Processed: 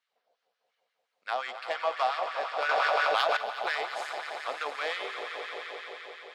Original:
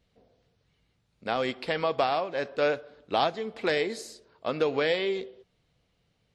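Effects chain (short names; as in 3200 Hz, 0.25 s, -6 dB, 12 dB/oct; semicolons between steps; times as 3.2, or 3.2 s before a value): added harmonics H 7 -27 dB, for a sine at -10.5 dBFS; swelling echo 87 ms, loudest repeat 5, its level -11 dB; LFO high-pass sine 5.7 Hz 680–1500 Hz; 2.69–3.37 fast leveller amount 100%; gain -5 dB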